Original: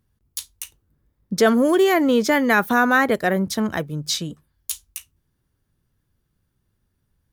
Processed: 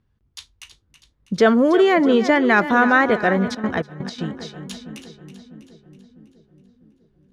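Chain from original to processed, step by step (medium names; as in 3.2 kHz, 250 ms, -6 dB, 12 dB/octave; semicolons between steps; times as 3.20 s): low-pass 3.8 kHz 12 dB/octave; on a send: two-band feedback delay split 380 Hz, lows 650 ms, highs 324 ms, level -12 dB; 3.36–4.27 s: on the sum: trance gate ".xx.xx..x" 165 bpm -12 dB; trim +1.5 dB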